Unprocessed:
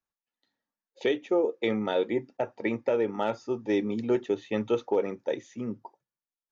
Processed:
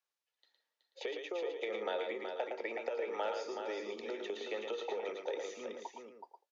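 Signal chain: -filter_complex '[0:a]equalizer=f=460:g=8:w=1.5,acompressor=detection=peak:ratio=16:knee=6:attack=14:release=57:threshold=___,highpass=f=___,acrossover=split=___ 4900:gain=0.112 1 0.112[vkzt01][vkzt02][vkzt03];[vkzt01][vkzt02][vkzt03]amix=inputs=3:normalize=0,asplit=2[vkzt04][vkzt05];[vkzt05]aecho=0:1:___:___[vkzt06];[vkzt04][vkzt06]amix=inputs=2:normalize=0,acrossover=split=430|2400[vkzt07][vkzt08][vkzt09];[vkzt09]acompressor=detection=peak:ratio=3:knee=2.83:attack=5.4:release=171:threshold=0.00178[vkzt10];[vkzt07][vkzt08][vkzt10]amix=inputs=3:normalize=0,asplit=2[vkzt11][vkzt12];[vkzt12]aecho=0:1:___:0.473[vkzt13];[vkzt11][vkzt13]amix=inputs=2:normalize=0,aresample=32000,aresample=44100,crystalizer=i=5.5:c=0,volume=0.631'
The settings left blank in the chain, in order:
0.0316, 250, 420, 112, 0.501, 374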